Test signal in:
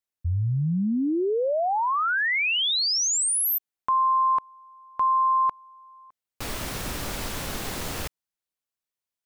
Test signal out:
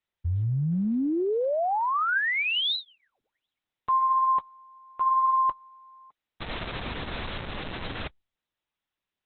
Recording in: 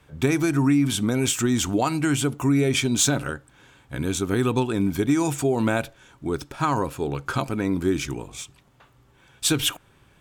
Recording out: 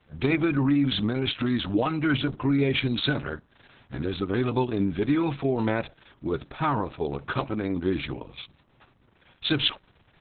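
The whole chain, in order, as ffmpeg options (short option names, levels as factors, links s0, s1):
-af "volume=0.841" -ar 48000 -c:a libopus -b:a 6k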